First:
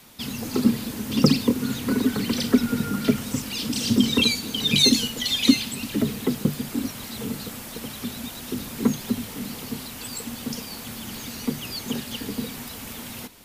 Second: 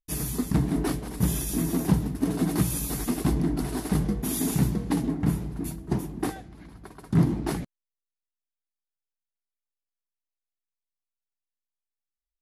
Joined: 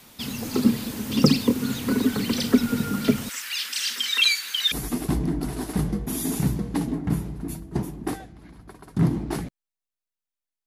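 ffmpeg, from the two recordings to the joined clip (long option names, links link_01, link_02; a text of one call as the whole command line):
ffmpeg -i cue0.wav -i cue1.wav -filter_complex "[0:a]asettb=1/sr,asplit=3[link_01][link_02][link_03];[link_01]atrim=end=3.294[link_04];[link_02]atrim=start=3.29:end=4.72,asetpts=PTS-STARTPTS,afade=type=in:duration=0.004:curve=qsin,afade=type=out:start_time=1.426:duration=0.004:curve=qsin,highpass=frequency=1700:width_type=q:width=2.7[link_05];[link_03]atrim=start=4.716[link_06];[link_04][link_05]acrossfade=duration=0.004:curve1=hsin:curve2=qsin[link_07];[link_07][link_06]acrossfade=duration=0.004:curve1=qsin:curve2=hsin,apad=whole_dur=10.66,atrim=end=10.66,atrim=end=4.722[link_08];[1:a]atrim=start=2.878:end=8.82[link_09];[link_08][link_09]acrossfade=duration=0.004:curve1=hsin:curve2=hsin" out.wav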